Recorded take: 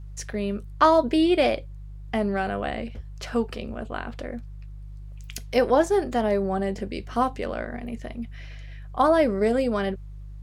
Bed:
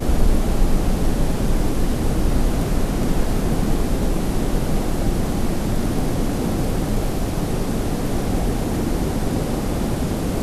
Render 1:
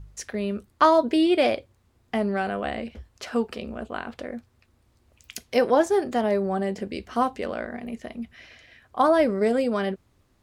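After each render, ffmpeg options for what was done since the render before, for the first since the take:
-af "bandreject=f=50:t=h:w=4,bandreject=f=100:t=h:w=4,bandreject=f=150:t=h:w=4"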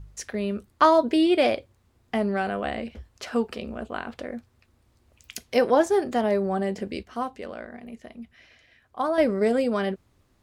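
-filter_complex "[0:a]asplit=3[s0][s1][s2];[s0]atrim=end=7.032[s3];[s1]atrim=start=7.028:end=9.182,asetpts=PTS-STARTPTS,volume=0.473[s4];[s2]atrim=start=9.178[s5];[s3][s4]acrossfade=d=0.004:c1=hsin:c2=hsin[s6];[s6][s5]acrossfade=d=0.004:c1=hsin:c2=hsin"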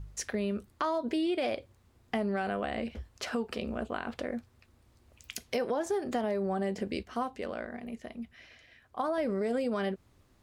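-af "alimiter=limit=0.133:level=0:latency=1:release=102,acompressor=threshold=0.0316:ratio=2.5"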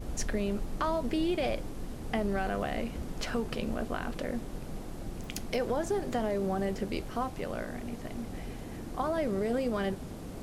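-filter_complex "[1:a]volume=0.106[s0];[0:a][s0]amix=inputs=2:normalize=0"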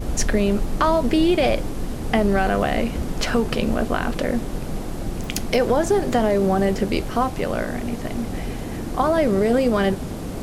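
-af "volume=3.98"

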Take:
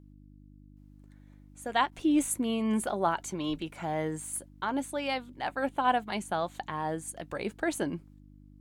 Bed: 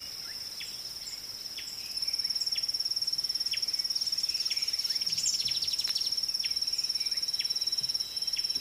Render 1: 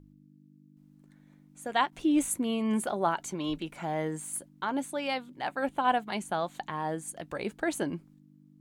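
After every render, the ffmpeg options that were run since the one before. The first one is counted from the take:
-af "bandreject=f=50:t=h:w=4,bandreject=f=100:t=h:w=4"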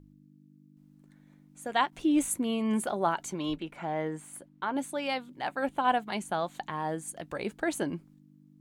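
-filter_complex "[0:a]asettb=1/sr,asplit=3[s0][s1][s2];[s0]atrim=end=3.554[s3];[s1]atrim=start=3.55:end=4.76,asetpts=PTS-STARTPTS,afade=t=in:d=0.004:c=qsin,afade=t=out:st=1.206:d=0.004:c=qsin,bass=f=250:g=-3,treble=f=4000:g=-10[s4];[s2]atrim=start=4.756[s5];[s3][s4]acrossfade=d=0.004:c1=hsin:c2=qsin[s6];[s6][s5]acrossfade=d=0.004:c1=qsin:c2=hsin"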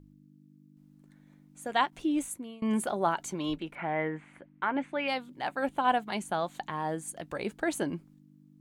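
-filter_complex "[0:a]asettb=1/sr,asplit=3[s0][s1][s2];[s0]atrim=end=3.754[s3];[s1]atrim=start=3.75:end=5.08,asetpts=PTS-STARTPTS,afade=t=in:d=0.004:c=qsin,afade=t=out:st=1.326:d=0.004:c=qsin,lowpass=f=2200:t=q:w=2.6[s4];[s2]atrim=start=5.076[s5];[s3][s4]acrossfade=d=0.004:c1=hsin:c2=qsin[s6];[s6][s5]acrossfade=d=0.004:c1=qsin:c2=hsin,asplit=2[s7][s8];[s7]atrim=end=2.62,asetpts=PTS-STARTPTS,afade=t=out:st=1.83:d=0.79:silence=0.0668344[s9];[s8]atrim=start=2.62,asetpts=PTS-STARTPTS,afade=t=in:d=0.004:c=hsin:silence=0.0668344[s10];[s9][s10]concat=n=2:v=0:a=1"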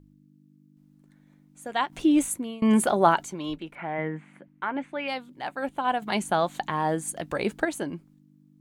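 -filter_complex "[0:a]asettb=1/sr,asplit=3[s0][s1][s2];[s0]atrim=end=3.984[s3];[s1]atrim=start=3.98:end=4.48,asetpts=PTS-STARTPTS,afade=t=in:d=0.004:c=qsin,afade=t=out:st=0.496:d=0.004:c=qsin,lowshelf=f=120:t=q:w=3:g=-11.5[s4];[s2]atrim=start=4.476[s5];[s3][s4]acrossfade=d=0.004:c1=hsin:c2=qsin[s6];[s6][s5]acrossfade=d=0.004:c1=qsin:c2=hsin,asplit=5[s7][s8][s9][s10][s11];[s7]atrim=end=1.902[s12];[s8]atrim=start=1.898:end=3.242,asetpts=PTS-STARTPTS,volume=2.66[s13];[s9]atrim=start=3.238:end=6.022[s14];[s10]atrim=start=6.018:end=7.652,asetpts=PTS-STARTPTS,volume=2.24[s15];[s11]atrim=start=7.648[s16];[s12][s13]acrossfade=d=0.004:c1=hsin:c2=hsin[s17];[s17][s14]acrossfade=d=0.004:c1=hsin:c2=hsin[s18];[s18][s15]acrossfade=d=0.004:c1=hsin:c2=hsin[s19];[s19][s16]acrossfade=d=0.004:c1=hsin:c2=hsin"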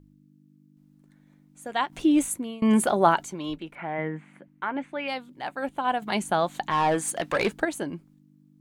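-filter_complex "[0:a]asplit=3[s0][s1][s2];[s0]afade=t=out:st=6.7:d=0.02[s3];[s1]asplit=2[s4][s5];[s5]highpass=f=720:p=1,volume=6.31,asoftclip=type=tanh:threshold=0.188[s6];[s4][s6]amix=inputs=2:normalize=0,lowpass=f=5400:p=1,volume=0.501,afade=t=in:st=6.7:d=0.02,afade=t=out:st=7.48:d=0.02[s7];[s2]afade=t=in:st=7.48:d=0.02[s8];[s3][s7][s8]amix=inputs=3:normalize=0"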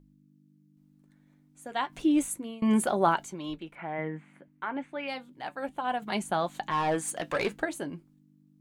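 -af "flanger=delay=5.2:depth=2.2:regen=-69:speed=0.32:shape=sinusoidal"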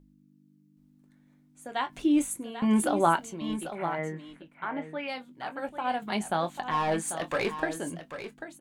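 -filter_complex "[0:a]asplit=2[s0][s1];[s1]adelay=24,volume=0.266[s2];[s0][s2]amix=inputs=2:normalize=0,aecho=1:1:792:0.299"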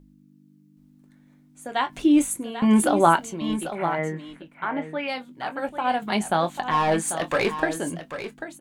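-af "volume=2"

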